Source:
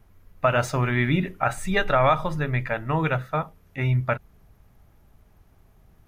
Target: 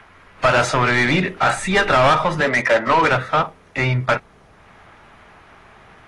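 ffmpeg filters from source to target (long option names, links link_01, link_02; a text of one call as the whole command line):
ffmpeg -i in.wav -filter_complex "[0:a]asettb=1/sr,asplit=3[link_01][link_02][link_03];[link_01]atrim=end=2.404[link_04];[link_02]atrim=start=2.4:end=3.09,asetpts=PTS-STARTPTS,afade=type=in:duration=0.004:curve=qsin,afade=type=out:start_time=0.686:duration=0.004:curve=qsin,highpass=frequency=140:width=0.5412,highpass=frequency=140:width=1.3066,equalizer=frequency=150:width_type=q:width=4:gain=-9,equalizer=frequency=230:width_type=q:width=4:gain=6,equalizer=frequency=560:width_type=q:width=4:gain=9,equalizer=frequency=1000:width_type=q:width=4:gain=5,equalizer=frequency=2000:width_type=q:width=4:gain=9,equalizer=frequency=2800:width_type=q:width=4:gain=-4,lowpass=frequency=6500:width=0.5412,lowpass=frequency=6500:width=1.3066[link_05];[link_03]atrim=start=3.086[link_06];[link_04][link_05]acrossfade=duration=0.004:curve1=hsin:curve2=qsin[link_07];[link_07][link_06]acrossfade=duration=0.004:curve1=qsin:curve2=hsin,asplit=2[link_08][link_09];[link_09]highpass=frequency=720:poles=1,volume=23dB,asoftclip=type=tanh:threshold=-7dB[link_10];[link_08][link_10]amix=inputs=2:normalize=0,lowpass=frequency=2800:poles=1,volume=-6dB,acrossover=split=200|960|3500[link_11][link_12][link_13][link_14];[link_13]acompressor=mode=upward:threshold=-41dB:ratio=2.5[link_15];[link_11][link_12][link_15][link_14]amix=inputs=4:normalize=0" -ar 24000 -c:a aac -b:a 32k out.aac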